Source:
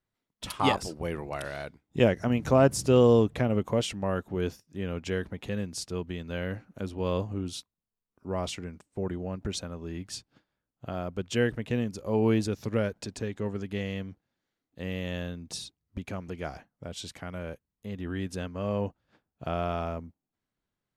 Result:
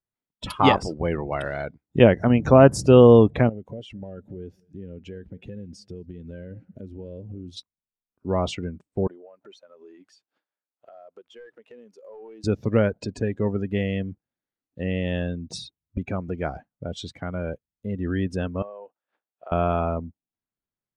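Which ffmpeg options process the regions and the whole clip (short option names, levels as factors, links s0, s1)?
-filter_complex "[0:a]asettb=1/sr,asplit=3[s0][s1][s2];[s0]atrim=end=3.494[s3];[s1]atrim=start=3.49:end=7.57,asetpts=PTS-STARTPTS,afade=t=in:d=0.004:c=qsin,afade=t=out:st=4.076:d=0.004:c=qsin,acompressor=threshold=0.00708:ratio=4:attack=3.2:release=140:knee=1:detection=peak,equalizer=f=1100:w=4.6:g=-12,asplit=2[s4][s5];[s5]adelay=224,lowpass=f=870:p=1,volume=0.141,asplit=2[s6][s7];[s7]adelay=224,lowpass=f=870:p=1,volume=0.51,asplit=2[s8][s9];[s9]adelay=224,lowpass=f=870:p=1,volume=0.51,asplit=2[s10][s11];[s11]adelay=224,lowpass=f=870:p=1,volume=0.51[s12];[s4][s6][s8][s10][s12]amix=inputs=5:normalize=0,atrim=end_sample=179928[s13];[s2]atrim=start=7.566[s14];[s3][s13]acrossfade=d=0.004:c1=hsin:c2=qsin[s15];[s15][s14]acrossfade=d=0.004:c1=qsin:c2=hsin,asettb=1/sr,asplit=3[s16][s17][s18];[s16]atrim=end=9.074[s19];[s17]atrim=start=9.07:end=12.44,asetpts=PTS-STARTPTS,afade=t=in:d=0.004:c=qsin,afade=t=out:st=3.366:d=0.004:c=qsin,highpass=510,aeval=exprs='clip(val(0),-1,0.0335)':c=same,acompressor=threshold=0.00398:ratio=5:attack=3.2:release=140:knee=1:detection=peak[s20];[s18]atrim=start=12.436[s21];[s19][s20]acrossfade=d=0.004:c1=hsin:c2=qsin[s22];[s22][s21]acrossfade=d=0.004:c1=qsin:c2=hsin,asettb=1/sr,asplit=3[s23][s24][s25];[s23]atrim=end=18.624[s26];[s24]atrim=start=18.62:end=19.52,asetpts=PTS-STARTPTS,afade=t=in:d=0.004:c=qsin,afade=t=out:st=0.896:d=0.004:c=qsin,acompressor=threshold=0.0158:ratio=8:attack=3.2:release=140:knee=1:detection=peak,highpass=560,lowpass=3800[s27];[s25]atrim=start=19.516[s28];[s26][s27]acrossfade=d=0.004:c1=hsin:c2=qsin[s29];[s29][s28]acrossfade=d=0.004:c1=qsin:c2=hsin,afftdn=nr=17:nf=-43,highshelf=f=5000:g=-10,volume=2.51"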